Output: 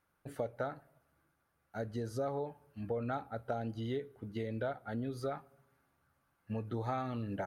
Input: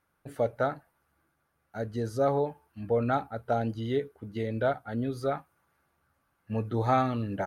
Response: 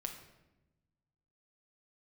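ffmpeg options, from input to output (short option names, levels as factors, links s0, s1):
-filter_complex "[0:a]acompressor=threshold=0.0282:ratio=4,asplit=2[s0][s1];[1:a]atrim=start_sample=2205[s2];[s1][s2]afir=irnorm=-1:irlink=0,volume=0.168[s3];[s0][s3]amix=inputs=2:normalize=0,volume=0.631"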